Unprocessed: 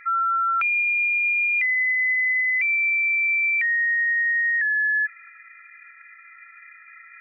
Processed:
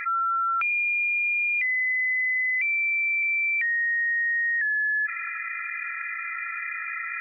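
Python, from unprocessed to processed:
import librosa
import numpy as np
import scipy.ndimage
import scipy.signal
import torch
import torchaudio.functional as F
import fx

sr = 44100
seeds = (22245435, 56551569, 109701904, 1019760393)

y = fx.highpass(x, sr, hz=1400.0, slope=24, at=(0.71, 3.23))
y = fx.env_flatten(y, sr, amount_pct=70)
y = y * 10.0 ** (-3.5 / 20.0)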